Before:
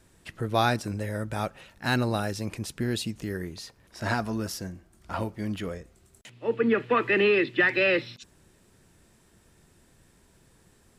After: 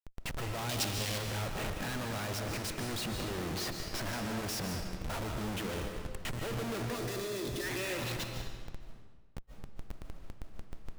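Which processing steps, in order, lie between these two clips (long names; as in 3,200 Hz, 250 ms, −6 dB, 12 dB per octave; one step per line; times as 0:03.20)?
downward compressor 3 to 1, threshold −33 dBFS, peak gain reduction 11 dB
comparator with hysteresis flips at −49.5 dBFS
0:00.69–0:01.18: high shelf with overshoot 2,200 Hz +8 dB, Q 1.5
0:06.96–0:07.63: gain on a spectral selection 740–3,300 Hz −7 dB
convolution reverb RT60 1.3 s, pre-delay 105 ms, DRR 3.5 dB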